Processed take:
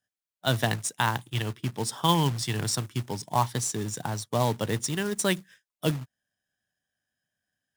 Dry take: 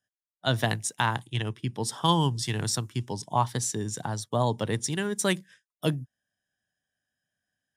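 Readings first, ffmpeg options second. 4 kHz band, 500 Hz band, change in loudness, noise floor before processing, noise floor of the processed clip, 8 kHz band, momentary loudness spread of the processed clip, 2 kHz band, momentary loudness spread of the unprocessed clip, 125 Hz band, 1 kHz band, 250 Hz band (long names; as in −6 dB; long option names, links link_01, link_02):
+0.5 dB, 0.0 dB, +0.5 dB, below −85 dBFS, below −85 dBFS, +0.5 dB, 8 LU, +0.5 dB, 8 LU, 0.0 dB, 0.0 dB, 0.0 dB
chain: -af "acrusher=bits=3:mode=log:mix=0:aa=0.000001"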